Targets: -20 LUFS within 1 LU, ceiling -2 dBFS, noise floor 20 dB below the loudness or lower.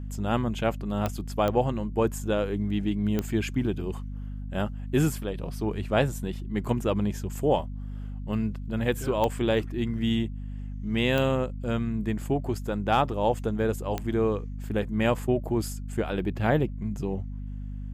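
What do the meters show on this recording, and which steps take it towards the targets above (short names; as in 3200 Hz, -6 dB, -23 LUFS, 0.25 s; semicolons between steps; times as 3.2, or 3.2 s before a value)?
clicks 6; hum 50 Hz; harmonics up to 250 Hz; hum level -33 dBFS; loudness -28.0 LUFS; peak -10.5 dBFS; loudness target -20.0 LUFS
-> de-click; notches 50/100/150/200/250 Hz; gain +8 dB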